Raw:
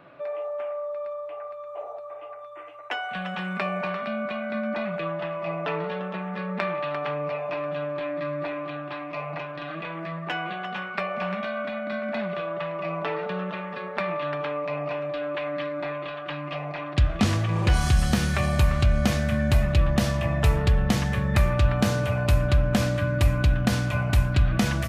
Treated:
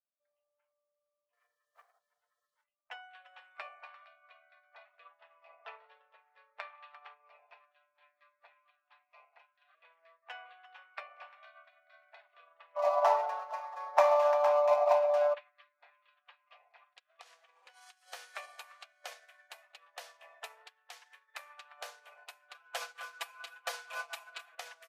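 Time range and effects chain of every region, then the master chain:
0:01.33–0:02.64: low-shelf EQ 350 Hz +5 dB + bit-depth reduction 8 bits, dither none + highs frequency-modulated by the lows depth 0.63 ms
0:12.76–0:15.34: running median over 15 samples + flat-topped bell 820 Hz +13.5 dB 1 octave + comb filter 5.4 ms, depth 37%
0:16.84–0:18.08: low-shelf EQ 240 Hz −4.5 dB + downward compressor 3 to 1, threshold −25 dBFS
0:20.67–0:21.39: high-pass filter 870 Hz 6 dB per octave + highs frequency-modulated by the lows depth 0.1 ms
0:22.54–0:24.55: comb filter 6 ms, depth 100% + repeating echo 261 ms, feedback 21%, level −9 dB
whole clip: Butterworth high-pass 520 Hz 48 dB per octave; noise reduction from a noise print of the clip's start 16 dB; expander for the loud parts 2.5 to 1, over −44 dBFS

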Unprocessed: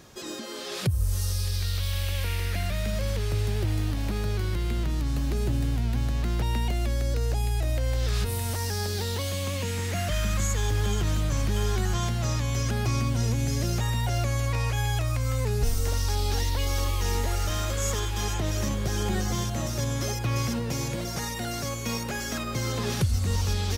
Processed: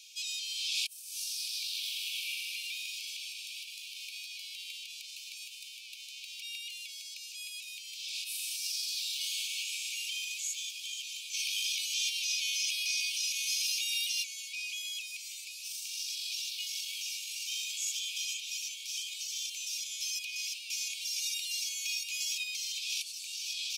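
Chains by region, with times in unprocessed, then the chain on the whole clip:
0:11.33–0:14.22: ceiling on every frequency bin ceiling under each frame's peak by 20 dB + notch filter 7,300 Hz, Q 6.3
whole clip: brickwall limiter −23.5 dBFS; Chebyshev high-pass filter 2,300 Hz, order 10; high-shelf EQ 11,000 Hz −11.5 dB; level +6.5 dB

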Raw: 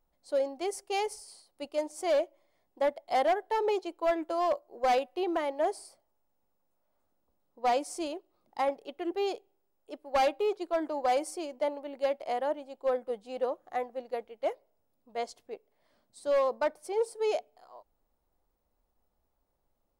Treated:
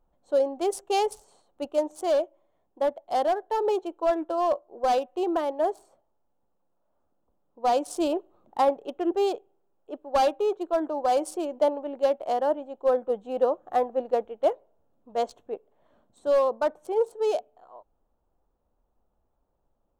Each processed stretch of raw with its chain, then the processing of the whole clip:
0:04.03–0:04.64: low-pass filter 7,300 Hz + one half of a high-frequency compander encoder only
whole clip: adaptive Wiener filter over 9 samples; parametric band 2,100 Hz −11.5 dB 0.49 octaves; speech leveller 0.5 s; level +5.5 dB

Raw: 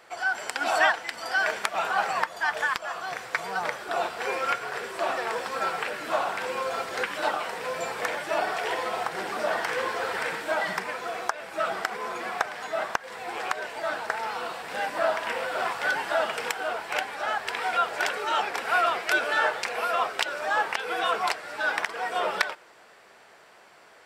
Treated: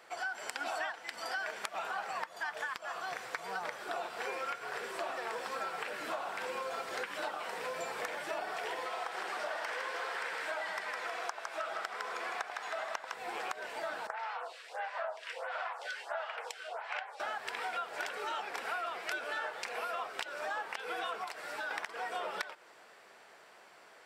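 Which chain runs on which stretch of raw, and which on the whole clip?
0:08.86–0:13.14: meter weighting curve A + echo with a time of its own for lows and highs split 900 Hz, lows 88 ms, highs 158 ms, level −5 dB
0:14.07–0:17.20: inverse Chebyshev high-pass filter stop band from 160 Hz, stop band 60 dB + high-frequency loss of the air 58 metres + phaser with staggered stages 1.5 Hz
0:21.24–0:21.71: high-shelf EQ 11,000 Hz +6.5 dB + downward compressor 3 to 1, threshold −31 dBFS
whole clip: low-shelf EQ 100 Hz −12 dB; downward compressor, threshold −31 dBFS; level −4 dB

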